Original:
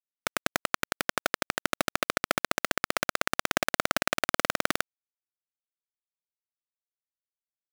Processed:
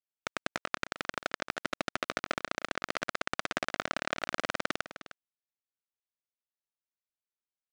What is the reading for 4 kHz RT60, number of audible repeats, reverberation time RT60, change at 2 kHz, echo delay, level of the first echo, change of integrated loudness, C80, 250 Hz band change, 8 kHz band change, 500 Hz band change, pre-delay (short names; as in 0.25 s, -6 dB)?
none, 1, none, -5.5 dB, 0.307 s, -14.0 dB, -6.0 dB, none, -5.5 dB, -11.5 dB, -5.5 dB, none